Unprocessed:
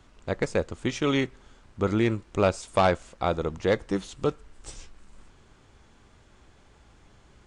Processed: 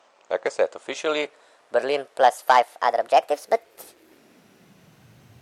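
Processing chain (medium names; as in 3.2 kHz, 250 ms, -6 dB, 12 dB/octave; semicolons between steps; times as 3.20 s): gliding tape speed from 88% -> 188%; high-pass sweep 610 Hz -> 82 Hz, 3.31–5.67 s; trim +1.5 dB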